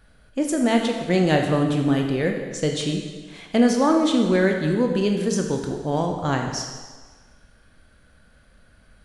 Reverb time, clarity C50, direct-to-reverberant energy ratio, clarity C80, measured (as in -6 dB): 1.4 s, 4.5 dB, 2.5 dB, 6.0 dB